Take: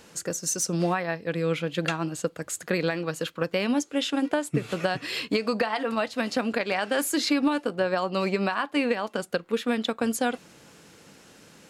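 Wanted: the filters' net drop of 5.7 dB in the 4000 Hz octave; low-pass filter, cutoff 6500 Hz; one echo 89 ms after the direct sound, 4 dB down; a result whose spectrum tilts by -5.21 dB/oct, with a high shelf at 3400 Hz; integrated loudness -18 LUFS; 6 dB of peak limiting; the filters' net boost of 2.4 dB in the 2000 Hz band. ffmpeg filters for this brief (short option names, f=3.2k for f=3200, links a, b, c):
-af "lowpass=6.5k,equalizer=f=2k:t=o:g=6,highshelf=f=3.4k:g=-5,equalizer=f=4k:t=o:g=-6,alimiter=limit=-17dB:level=0:latency=1,aecho=1:1:89:0.631,volume=9.5dB"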